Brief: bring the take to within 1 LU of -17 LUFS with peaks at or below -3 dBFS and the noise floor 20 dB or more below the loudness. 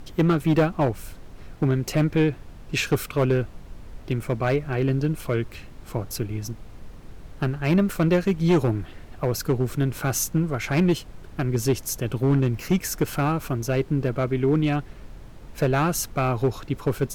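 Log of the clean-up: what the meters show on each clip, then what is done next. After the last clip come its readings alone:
clipped 0.9%; flat tops at -13.5 dBFS; noise floor -43 dBFS; noise floor target -45 dBFS; loudness -24.5 LUFS; peak -13.5 dBFS; loudness target -17.0 LUFS
-> clip repair -13.5 dBFS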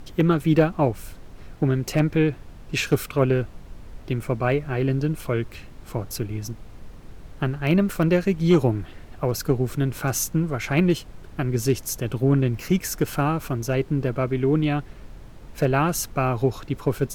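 clipped 0.0%; noise floor -43 dBFS; noise floor target -44 dBFS
-> noise print and reduce 6 dB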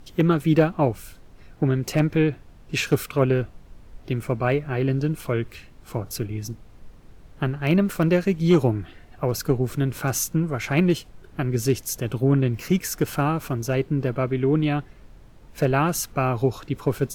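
noise floor -48 dBFS; loudness -23.5 LUFS; peak -5.5 dBFS; loudness target -17.0 LUFS
-> gain +6.5 dB; limiter -3 dBFS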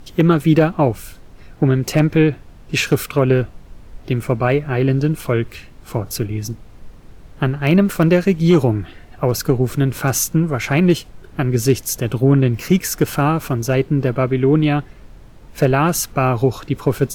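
loudness -17.5 LUFS; peak -3.0 dBFS; noise floor -42 dBFS

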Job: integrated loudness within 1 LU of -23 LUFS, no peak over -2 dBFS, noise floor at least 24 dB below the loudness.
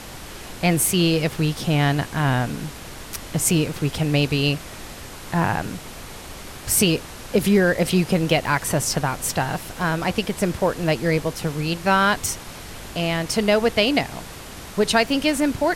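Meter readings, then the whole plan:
noise floor -38 dBFS; noise floor target -46 dBFS; loudness -21.5 LUFS; peak -5.0 dBFS; loudness target -23.0 LUFS
-> noise print and reduce 8 dB; gain -1.5 dB

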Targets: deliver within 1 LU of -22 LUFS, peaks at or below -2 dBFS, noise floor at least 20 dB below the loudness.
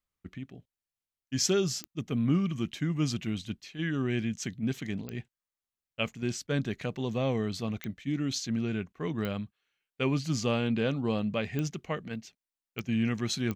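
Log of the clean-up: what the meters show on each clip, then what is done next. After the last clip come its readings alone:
clicks 7; loudness -31.5 LUFS; peak -14.5 dBFS; loudness target -22.0 LUFS
-> de-click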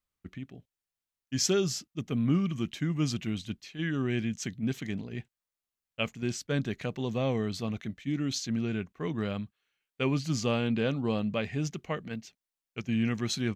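clicks 0; loudness -31.5 LUFS; peak -14.5 dBFS; loudness target -22.0 LUFS
-> gain +9.5 dB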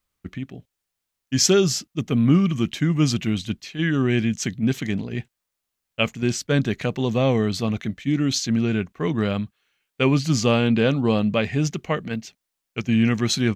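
loudness -22.0 LUFS; peak -5.0 dBFS; noise floor -82 dBFS

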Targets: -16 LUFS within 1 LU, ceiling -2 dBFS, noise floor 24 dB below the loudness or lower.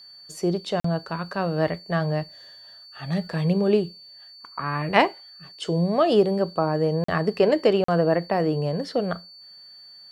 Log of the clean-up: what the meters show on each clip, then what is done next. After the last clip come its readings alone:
dropouts 3; longest dropout 44 ms; steady tone 4500 Hz; tone level -44 dBFS; loudness -24.0 LUFS; peak -4.5 dBFS; loudness target -16.0 LUFS
-> interpolate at 0.8/7.04/7.84, 44 ms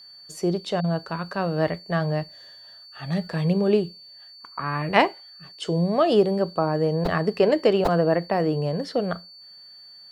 dropouts 0; steady tone 4500 Hz; tone level -44 dBFS
-> notch 4500 Hz, Q 30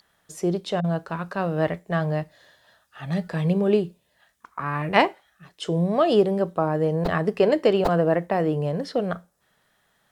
steady tone none; loudness -23.5 LUFS; peak -4.5 dBFS; loudness target -16.0 LUFS
-> gain +7.5 dB; limiter -2 dBFS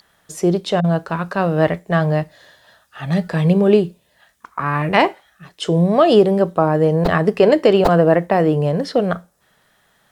loudness -16.5 LUFS; peak -2.0 dBFS; noise floor -60 dBFS

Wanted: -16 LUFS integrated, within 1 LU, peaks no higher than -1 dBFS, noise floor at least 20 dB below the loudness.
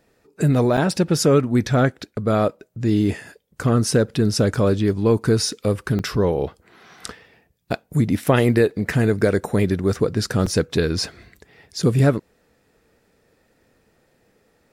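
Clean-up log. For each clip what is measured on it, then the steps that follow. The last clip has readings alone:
dropouts 3; longest dropout 5.0 ms; loudness -20.5 LUFS; peak -4.5 dBFS; loudness target -16.0 LUFS
-> interpolate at 0.77/5.99/10.46, 5 ms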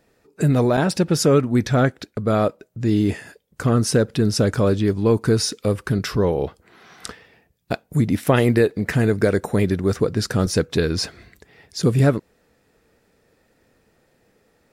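dropouts 0; loudness -20.5 LUFS; peak -4.5 dBFS; loudness target -16.0 LUFS
-> gain +4.5 dB; limiter -1 dBFS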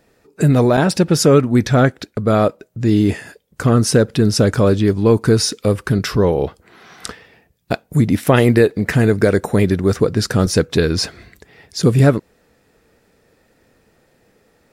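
loudness -16.0 LUFS; peak -1.0 dBFS; noise floor -59 dBFS

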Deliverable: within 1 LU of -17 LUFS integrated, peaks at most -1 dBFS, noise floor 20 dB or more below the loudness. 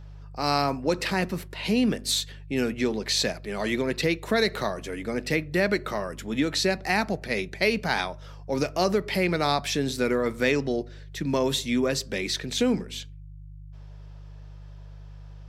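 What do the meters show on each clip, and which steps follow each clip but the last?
hum 50 Hz; harmonics up to 150 Hz; hum level -40 dBFS; loudness -26.5 LUFS; peak -8.5 dBFS; loudness target -17.0 LUFS
-> de-hum 50 Hz, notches 3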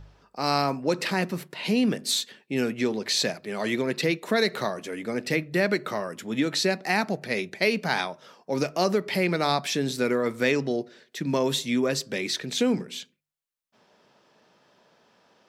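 hum none; loudness -26.5 LUFS; peak -8.5 dBFS; loudness target -17.0 LUFS
-> gain +9.5 dB; limiter -1 dBFS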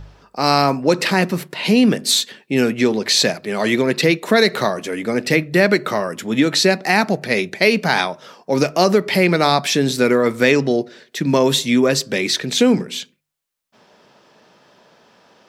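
loudness -17.0 LUFS; peak -1.0 dBFS; noise floor -60 dBFS

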